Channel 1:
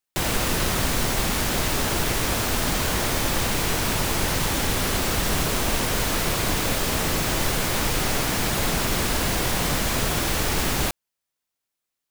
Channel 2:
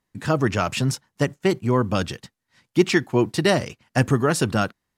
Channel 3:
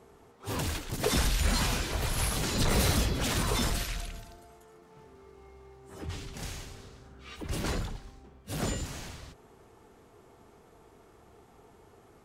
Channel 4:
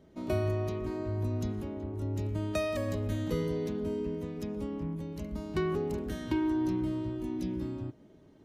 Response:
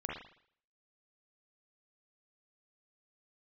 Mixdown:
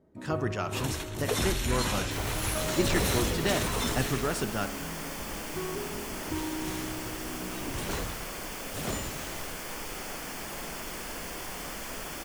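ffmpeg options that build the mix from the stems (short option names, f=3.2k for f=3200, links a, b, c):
-filter_complex "[0:a]equalizer=f=100:t=o:w=0.76:g=-12.5,bandreject=f=3.9k:w=5.1,adelay=1950,volume=-16dB,asplit=2[a][b];[b]volume=-6.5dB[c];[1:a]volume=-11.5dB,asplit=2[d][e];[e]volume=-11dB[f];[2:a]bandreject=f=4.8k:w=7.8,adelay=250,volume=-0.5dB[g];[3:a]lowpass=1.4k,volume=-5.5dB,asplit=2[h][i];[i]volume=-10.5dB[j];[4:a]atrim=start_sample=2205[k];[c][f][j]amix=inputs=3:normalize=0[l];[l][k]afir=irnorm=-1:irlink=0[m];[a][d][g][h][m]amix=inputs=5:normalize=0,lowshelf=f=220:g=-4"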